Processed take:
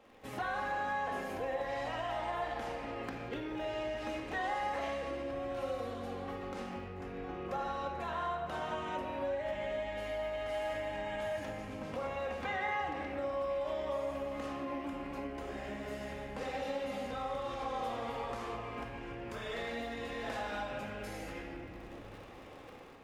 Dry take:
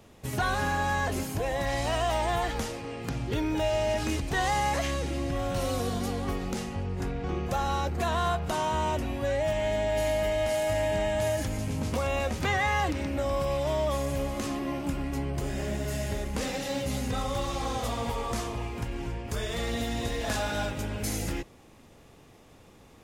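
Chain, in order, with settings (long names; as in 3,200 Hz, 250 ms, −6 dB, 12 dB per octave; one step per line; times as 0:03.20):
surface crackle 90 per second −41 dBFS
automatic gain control gain up to 7.5 dB
convolution reverb RT60 1.6 s, pre-delay 4 ms, DRR −1 dB
downward compressor 6 to 1, threshold −28 dBFS, peak gain reduction 16 dB
bass and treble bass −15 dB, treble −15 dB
level −4 dB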